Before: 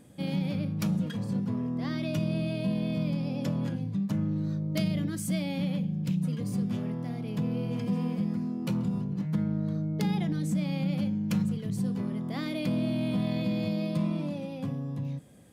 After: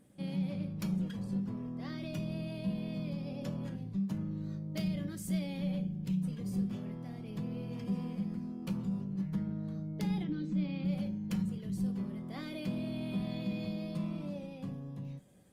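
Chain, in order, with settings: resonator 190 Hz, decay 0.27 s, harmonics all, mix 70%; 10.22–10.85 speaker cabinet 150–4500 Hz, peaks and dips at 300 Hz +8 dB, 690 Hz -9 dB, 1900 Hz -3 dB; Opus 24 kbps 48000 Hz

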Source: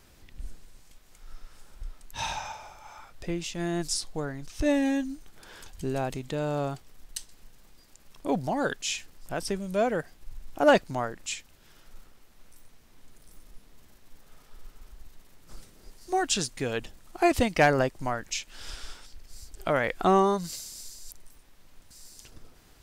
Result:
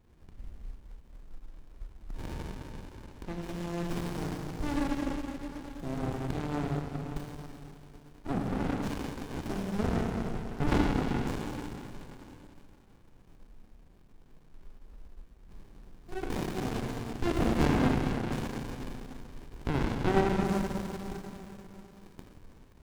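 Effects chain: Schroeder reverb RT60 3.3 s, combs from 27 ms, DRR -3.5 dB; running maximum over 65 samples; gain -3.5 dB

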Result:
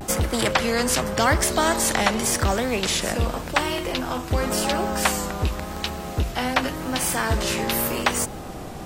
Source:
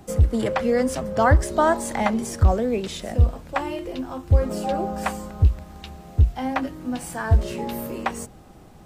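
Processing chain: vibrato 0.89 Hz 71 cents; spectral compressor 2:1

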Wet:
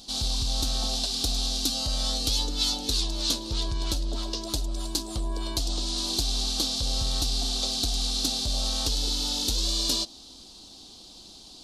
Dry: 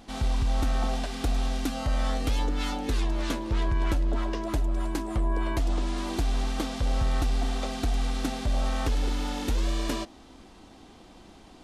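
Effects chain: resonant high shelf 2900 Hz +13.5 dB, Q 3; gain -4 dB

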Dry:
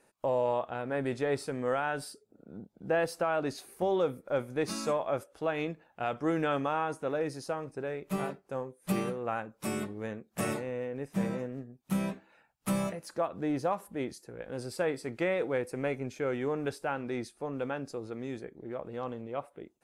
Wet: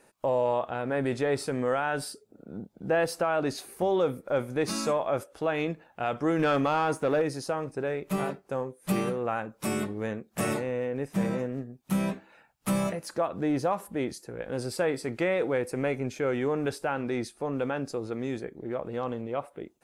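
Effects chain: in parallel at 0 dB: limiter -28.5 dBFS, peak gain reduction 9 dB; 6.39–7.22 on the sum: sample leveller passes 1

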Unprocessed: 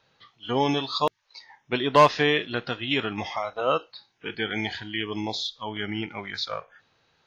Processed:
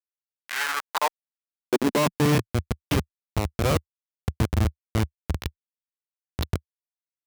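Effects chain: spring tank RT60 2.7 s, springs 46 ms, chirp 35 ms, DRR 18.5 dB; Schmitt trigger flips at -21 dBFS; high-pass sweep 2200 Hz -> 77 Hz, 0.39–2.66; gain +6 dB

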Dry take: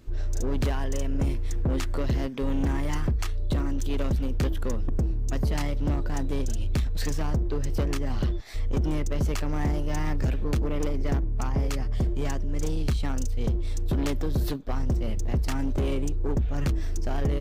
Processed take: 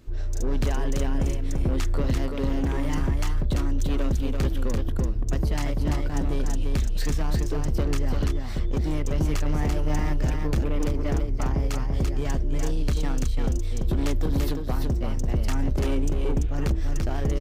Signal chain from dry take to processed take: echo 0.339 s -4 dB

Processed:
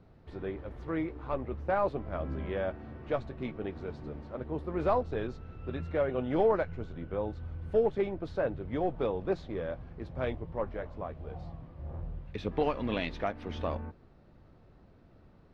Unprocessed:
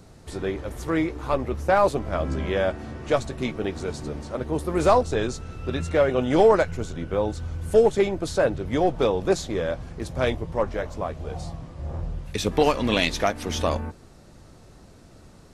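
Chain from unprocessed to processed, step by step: air absorption 340 m; gain -8.5 dB

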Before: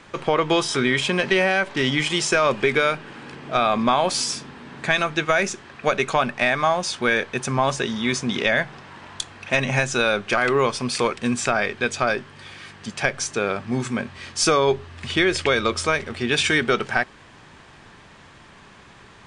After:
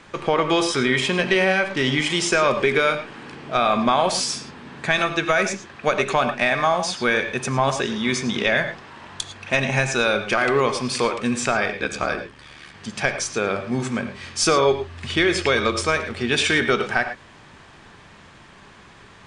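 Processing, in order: 11.71–12.75 ring modulator 37 Hz; reverb, pre-delay 3 ms, DRR 8 dB

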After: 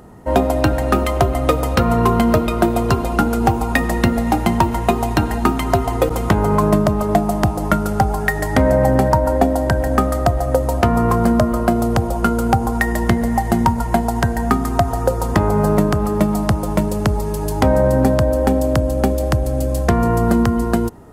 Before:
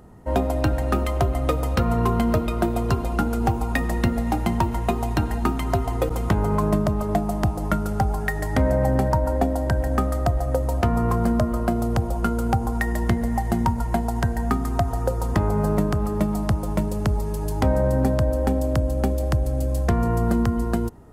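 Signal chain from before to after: low shelf 120 Hz -7 dB; gain +8 dB

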